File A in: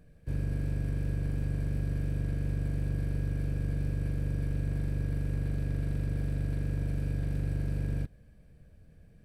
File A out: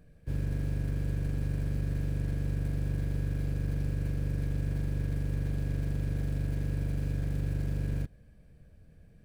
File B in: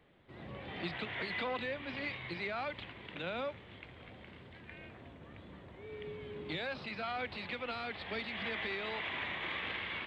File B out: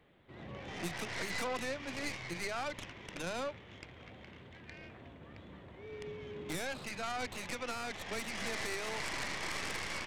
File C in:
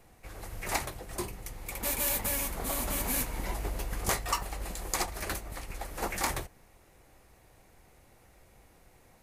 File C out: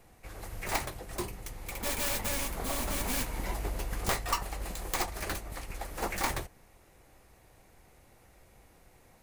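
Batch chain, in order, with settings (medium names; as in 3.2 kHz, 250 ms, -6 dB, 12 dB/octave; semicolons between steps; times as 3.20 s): tracing distortion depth 0.2 ms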